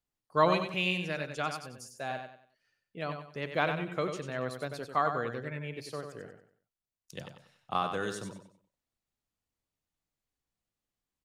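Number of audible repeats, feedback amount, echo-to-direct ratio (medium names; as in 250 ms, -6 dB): 3, 33%, -6.5 dB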